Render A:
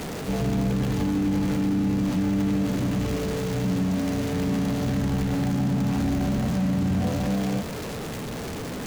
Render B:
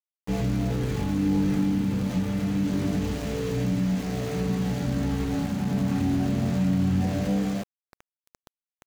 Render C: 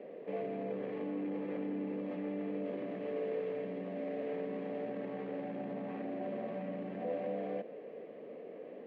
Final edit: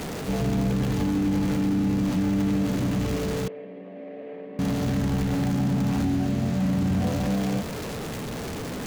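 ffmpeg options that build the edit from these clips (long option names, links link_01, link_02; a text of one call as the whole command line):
ffmpeg -i take0.wav -i take1.wav -i take2.wav -filter_complex "[0:a]asplit=3[link_01][link_02][link_03];[link_01]atrim=end=3.482[link_04];[2:a]atrim=start=3.478:end=4.592[link_05];[link_02]atrim=start=4.588:end=6.052[link_06];[1:a]atrim=start=6.048:end=6.602[link_07];[link_03]atrim=start=6.598[link_08];[link_04][link_05]acrossfade=duration=0.004:curve1=hsin:curve2=hsin[link_09];[link_09][link_06]acrossfade=duration=0.004:curve1=hsin:curve2=hsin[link_10];[link_10][link_07]acrossfade=duration=0.004:curve1=hsin:curve2=hsin[link_11];[link_11][link_08]acrossfade=duration=0.004:curve1=hsin:curve2=hsin" out.wav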